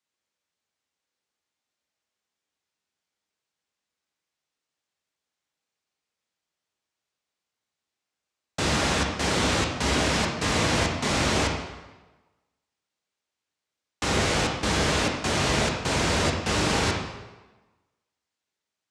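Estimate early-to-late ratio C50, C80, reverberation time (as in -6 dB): 3.5 dB, 6.0 dB, 1.2 s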